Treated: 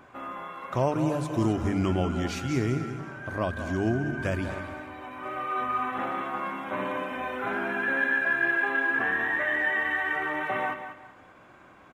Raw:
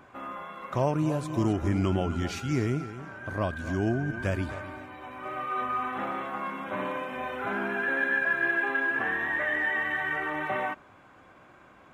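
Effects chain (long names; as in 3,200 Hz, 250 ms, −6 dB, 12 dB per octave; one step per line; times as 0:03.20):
mains-hum notches 50/100/150/200 Hz
repeating echo 192 ms, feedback 28%, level −10 dB
level +1 dB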